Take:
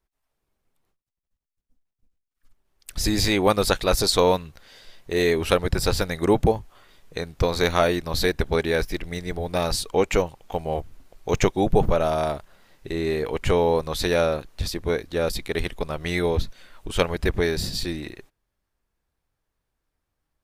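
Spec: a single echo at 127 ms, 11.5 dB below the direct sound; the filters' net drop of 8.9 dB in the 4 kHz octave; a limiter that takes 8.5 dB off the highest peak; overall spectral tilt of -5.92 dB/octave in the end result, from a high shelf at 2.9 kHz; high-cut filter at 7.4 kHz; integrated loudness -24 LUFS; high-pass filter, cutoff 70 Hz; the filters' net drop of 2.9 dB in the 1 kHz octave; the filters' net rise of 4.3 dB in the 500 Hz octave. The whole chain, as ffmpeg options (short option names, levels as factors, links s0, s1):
-af "highpass=70,lowpass=7400,equalizer=f=500:t=o:g=6.5,equalizer=f=1000:t=o:g=-6,highshelf=f=2900:g=-5,equalizer=f=4000:t=o:g=-6,alimiter=limit=0.266:level=0:latency=1,aecho=1:1:127:0.266"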